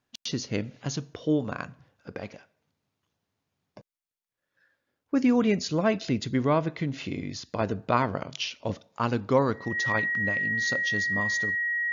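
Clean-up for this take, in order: band-stop 1.9 kHz, Q 30

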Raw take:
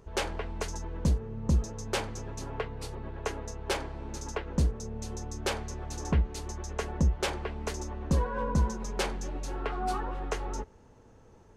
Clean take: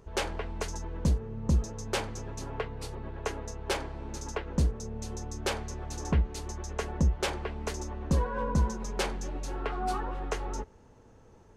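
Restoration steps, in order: nothing to do

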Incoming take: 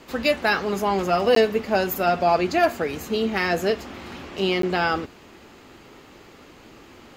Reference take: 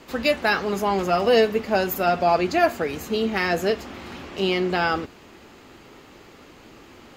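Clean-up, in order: clip repair -9 dBFS; interpolate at 1.35/4.62 s, 13 ms

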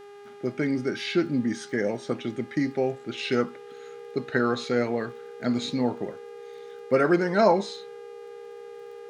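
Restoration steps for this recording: de-click; de-hum 406.3 Hz, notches 30; band-stop 470 Hz, Q 30

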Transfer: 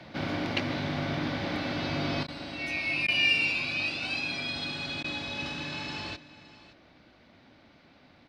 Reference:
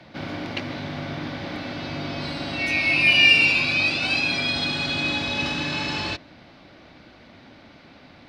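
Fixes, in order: interpolate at 2.27/3.07/5.03 s, 11 ms; inverse comb 568 ms -17.5 dB; trim 0 dB, from 2.23 s +9.5 dB

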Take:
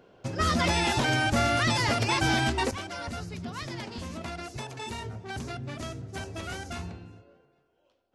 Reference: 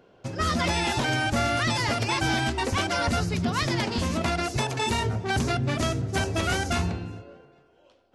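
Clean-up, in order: trim 0 dB, from 2.71 s +11 dB

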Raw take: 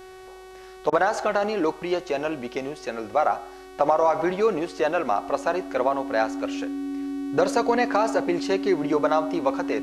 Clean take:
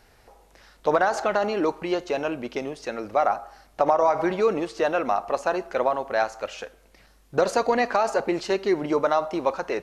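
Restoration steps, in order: de-hum 374.5 Hz, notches 35; band-stop 280 Hz, Q 30; interpolate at 0.90 s, 23 ms

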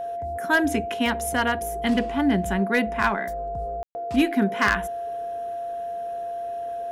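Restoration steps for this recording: clip repair -12 dBFS; band-stop 690 Hz, Q 30; room tone fill 3.83–3.95 s

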